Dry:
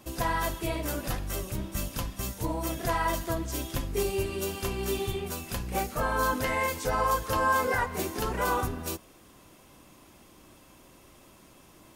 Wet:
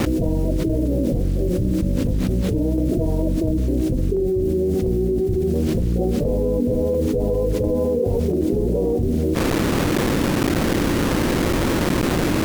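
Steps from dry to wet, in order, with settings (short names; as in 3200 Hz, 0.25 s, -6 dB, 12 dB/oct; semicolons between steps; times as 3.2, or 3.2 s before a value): steep low-pass 540 Hz 36 dB/oct; low shelf 93 Hz -4 dB; bit-crush 10-bit; tremolo saw down 1.5 Hz, depth 55%; speed mistake 25 fps video run at 24 fps; fast leveller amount 100%; gain +8 dB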